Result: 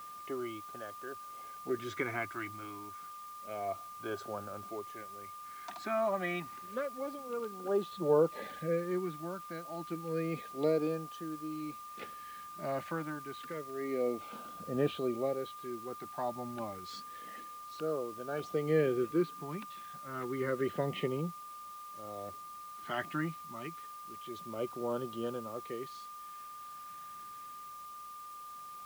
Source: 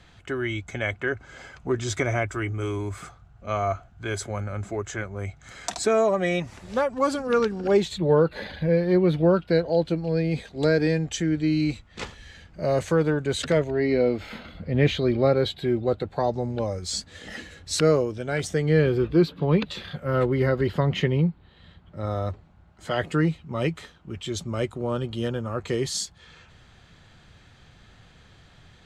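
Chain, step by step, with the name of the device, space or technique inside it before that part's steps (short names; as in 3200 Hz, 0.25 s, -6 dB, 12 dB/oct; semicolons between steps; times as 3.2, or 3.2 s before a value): shortwave radio (BPF 250–2600 Hz; tremolo 0.48 Hz, depth 69%; LFO notch sine 0.29 Hz 440–2200 Hz; whine 1200 Hz -39 dBFS; white noise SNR 21 dB); gain -6 dB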